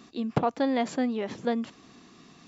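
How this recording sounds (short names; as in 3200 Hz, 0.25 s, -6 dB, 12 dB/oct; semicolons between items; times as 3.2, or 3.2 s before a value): noise floor -56 dBFS; spectral tilt -5.5 dB/oct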